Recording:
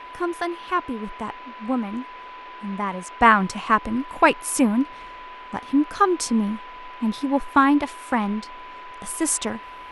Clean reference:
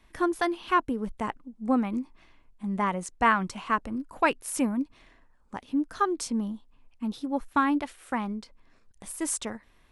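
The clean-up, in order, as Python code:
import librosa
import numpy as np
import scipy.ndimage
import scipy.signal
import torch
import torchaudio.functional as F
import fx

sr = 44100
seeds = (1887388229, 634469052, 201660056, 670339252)

y = fx.notch(x, sr, hz=1000.0, q=30.0)
y = fx.noise_reduce(y, sr, print_start_s=2.05, print_end_s=2.55, reduce_db=20.0)
y = fx.gain(y, sr, db=fx.steps((0.0, 0.0), (3.21, -7.5)))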